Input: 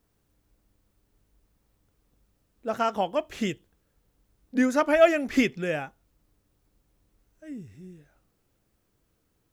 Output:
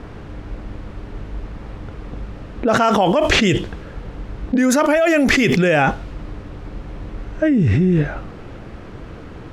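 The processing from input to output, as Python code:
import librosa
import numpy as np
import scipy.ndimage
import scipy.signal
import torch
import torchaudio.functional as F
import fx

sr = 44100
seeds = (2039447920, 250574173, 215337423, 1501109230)

y = fx.env_lowpass(x, sr, base_hz=2300.0, full_db=-20.5)
y = fx.env_flatten(y, sr, amount_pct=100)
y = y * 10.0 ** (-2.0 / 20.0)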